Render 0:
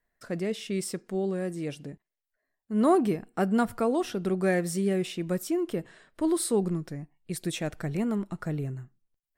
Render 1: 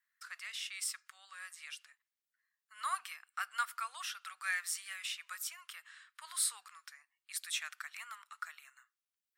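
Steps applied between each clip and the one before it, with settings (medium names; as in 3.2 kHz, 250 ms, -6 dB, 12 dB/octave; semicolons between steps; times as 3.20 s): elliptic high-pass 1.2 kHz, stop band 70 dB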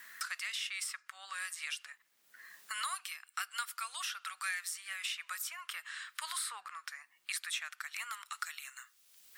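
three bands compressed up and down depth 100%; trim +2 dB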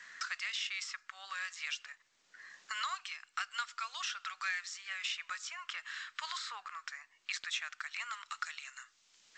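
trim +1 dB; G.722 64 kbps 16 kHz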